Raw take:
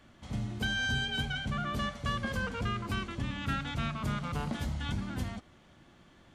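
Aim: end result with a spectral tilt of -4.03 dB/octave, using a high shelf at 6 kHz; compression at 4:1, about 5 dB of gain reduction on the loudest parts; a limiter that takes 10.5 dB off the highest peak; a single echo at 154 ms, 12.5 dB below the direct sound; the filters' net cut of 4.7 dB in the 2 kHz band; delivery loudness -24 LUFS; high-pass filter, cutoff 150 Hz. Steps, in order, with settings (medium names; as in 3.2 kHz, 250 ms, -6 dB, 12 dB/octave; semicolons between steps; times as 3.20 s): high-pass 150 Hz; peaking EQ 2 kHz -6 dB; treble shelf 6 kHz -9 dB; compression 4:1, threshold -38 dBFS; peak limiter -38 dBFS; delay 154 ms -12.5 dB; trim +22 dB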